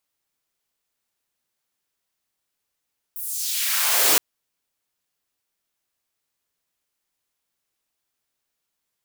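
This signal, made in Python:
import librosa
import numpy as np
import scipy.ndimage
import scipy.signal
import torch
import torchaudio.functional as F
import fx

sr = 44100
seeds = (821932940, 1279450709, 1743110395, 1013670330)

y = fx.riser_noise(sr, seeds[0], length_s=1.02, colour='white', kind='highpass', start_hz=15000.0, end_hz=270.0, q=1.4, swell_db=15, law='exponential')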